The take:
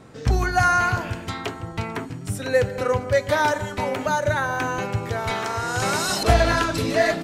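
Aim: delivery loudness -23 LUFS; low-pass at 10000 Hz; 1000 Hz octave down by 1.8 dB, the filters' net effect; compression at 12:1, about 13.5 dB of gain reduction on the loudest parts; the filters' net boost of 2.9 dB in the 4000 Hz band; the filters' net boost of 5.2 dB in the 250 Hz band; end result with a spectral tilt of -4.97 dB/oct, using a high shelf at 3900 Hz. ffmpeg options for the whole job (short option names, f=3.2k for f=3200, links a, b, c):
-af "lowpass=10k,equalizer=f=250:t=o:g=7,equalizer=f=1k:t=o:g=-3,highshelf=f=3.9k:g=-4,equalizer=f=4k:t=o:g=6,acompressor=threshold=-25dB:ratio=12,volume=6.5dB"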